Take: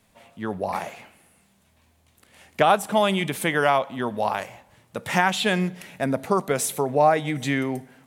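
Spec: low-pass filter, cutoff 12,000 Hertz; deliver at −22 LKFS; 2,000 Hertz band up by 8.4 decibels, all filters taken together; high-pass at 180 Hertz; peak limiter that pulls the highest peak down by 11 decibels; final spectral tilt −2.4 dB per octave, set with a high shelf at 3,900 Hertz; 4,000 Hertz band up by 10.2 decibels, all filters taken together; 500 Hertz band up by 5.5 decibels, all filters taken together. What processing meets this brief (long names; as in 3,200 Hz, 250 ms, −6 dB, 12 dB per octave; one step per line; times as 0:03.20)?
high-pass filter 180 Hz
low-pass filter 12,000 Hz
parametric band 500 Hz +6.5 dB
parametric band 2,000 Hz +7 dB
high-shelf EQ 3,900 Hz +8.5 dB
parametric band 4,000 Hz +5.5 dB
level −0.5 dB
brickwall limiter −9.5 dBFS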